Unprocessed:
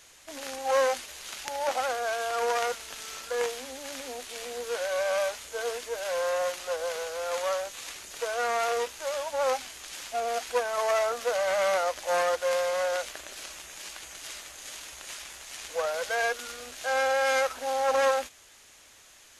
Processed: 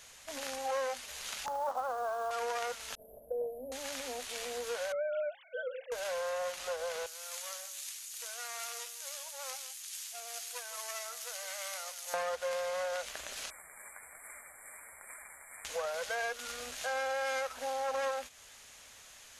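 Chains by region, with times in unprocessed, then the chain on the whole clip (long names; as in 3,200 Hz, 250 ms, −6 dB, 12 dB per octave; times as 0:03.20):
0:01.46–0:02.31: high shelf with overshoot 1,600 Hz −12 dB, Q 3 + log-companded quantiser 6 bits
0:02.95–0:03.72: inverse Chebyshev band-stop filter 1,300–7,400 Hz, stop band 50 dB + downward expander −52 dBFS + hollow resonant body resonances 630/1,500 Hz, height 14 dB, ringing for 40 ms
0:04.92–0:05.92: three sine waves on the formant tracks + mains-hum notches 60/120/180/240/300/360/420/480/540 Hz
0:07.06–0:12.14: first difference + single-tap delay 163 ms −13 dB
0:13.50–0:15.65: linear-phase brick-wall band-stop 2,400–7,300 Hz + low-shelf EQ 390 Hz −8 dB + flanger 1.2 Hz, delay 2.7 ms, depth 8.7 ms, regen +50%
whole clip: parametric band 340 Hz −14 dB 0.25 octaves; downward compressor 2.5 to 1, threshold −36 dBFS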